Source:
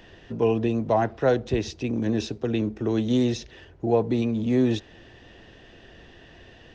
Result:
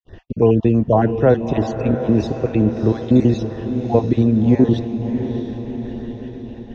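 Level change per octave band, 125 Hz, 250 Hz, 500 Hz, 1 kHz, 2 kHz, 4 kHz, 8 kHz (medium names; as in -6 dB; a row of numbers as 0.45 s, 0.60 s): +11.0 dB, +8.5 dB, +6.5 dB, +5.5 dB, +2.0 dB, -2.0 dB, no reading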